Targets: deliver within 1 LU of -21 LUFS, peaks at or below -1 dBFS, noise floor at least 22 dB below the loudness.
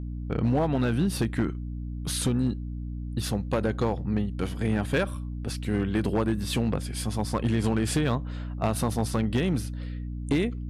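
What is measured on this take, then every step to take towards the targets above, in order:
clipped samples 1.4%; clipping level -18.0 dBFS; hum 60 Hz; highest harmonic 300 Hz; hum level -31 dBFS; loudness -28.0 LUFS; peak level -18.0 dBFS; loudness target -21.0 LUFS
-> clip repair -18 dBFS; hum notches 60/120/180/240/300 Hz; trim +7 dB

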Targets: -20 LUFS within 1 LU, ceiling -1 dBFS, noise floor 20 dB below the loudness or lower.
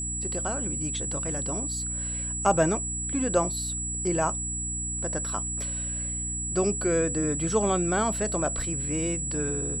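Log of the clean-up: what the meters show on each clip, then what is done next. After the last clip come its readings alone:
hum 60 Hz; highest harmonic 300 Hz; hum level -34 dBFS; steady tone 7.8 kHz; tone level -30 dBFS; loudness -27.0 LUFS; peak level -9.0 dBFS; loudness target -20.0 LUFS
-> de-hum 60 Hz, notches 5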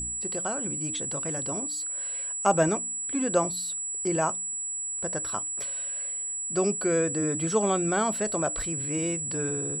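hum not found; steady tone 7.8 kHz; tone level -30 dBFS
-> band-stop 7.8 kHz, Q 30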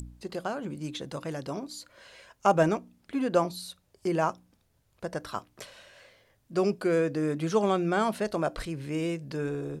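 steady tone not found; loudness -30.0 LUFS; peak level -9.5 dBFS; loudness target -20.0 LUFS
-> trim +10 dB; peak limiter -1 dBFS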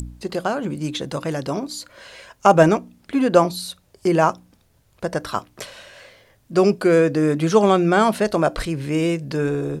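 loudness -20.0 LUFS; peak level -1.0 dBFS; noise floor -59 dBFS

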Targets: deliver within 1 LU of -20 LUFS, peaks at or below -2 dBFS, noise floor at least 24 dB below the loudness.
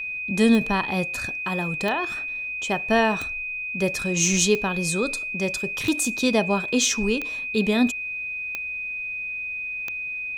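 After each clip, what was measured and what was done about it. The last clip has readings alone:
clicks found 8; steady tone 2.5 kHz; tone level -28 dBFS; loudness -23.5 LUFS; peak level -7.5 dBFS; loudness target -20.0 LUFS
-> de-click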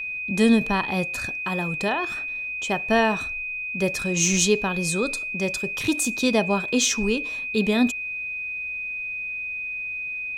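clicks found 0; steady tone 2.5 kHz; tone level -28 dBFS
-> band-stop 2.5 kHz, Q 30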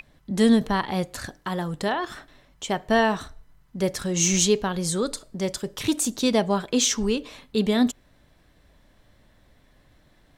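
steady tone not found; loudness -24.0 LUFS; peak level -8.0 dBFS; loudness target -20.0 LUFS
-> trim +4 dB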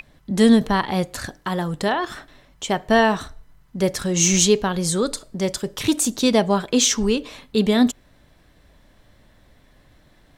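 loudness -20.0 LUFS; peak level -4.0 dBFS; noise floor -56 dBFS

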